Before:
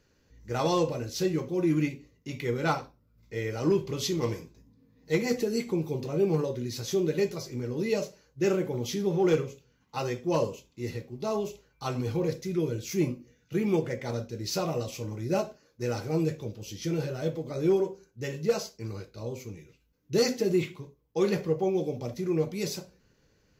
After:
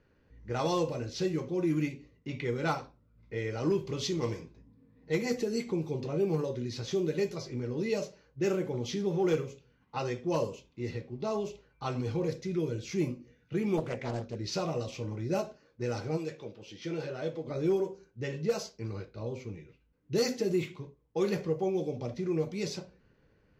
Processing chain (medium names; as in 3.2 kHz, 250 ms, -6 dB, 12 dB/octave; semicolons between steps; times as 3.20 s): 16.16–17.46 s: high-pass 670 Hz -> 260 Hz 6 dB/octave; level-controlled noise filter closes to 2.3 kHz, open at -21.5 dBFS; in parallel at +1 dB: compression, threshold -34 dBFS, peak gain reduction 14 dB; 13.77–14.36 s: on the sum: loudspeaker Doppler distortion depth 0.69 ms; trim -6 dB